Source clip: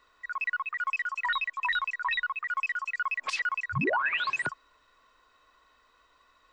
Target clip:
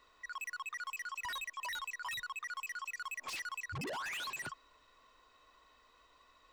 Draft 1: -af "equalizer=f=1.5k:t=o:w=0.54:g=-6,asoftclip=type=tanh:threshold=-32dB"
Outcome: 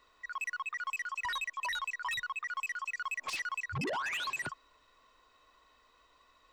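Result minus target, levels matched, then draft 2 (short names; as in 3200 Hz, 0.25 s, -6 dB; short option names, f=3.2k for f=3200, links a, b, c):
soft clip: distortion -4 dB
-af "equalizer=f=1.5k:t=o:w=0.54:g=-6,asoftclip=type=tanh:threshold=-39dB"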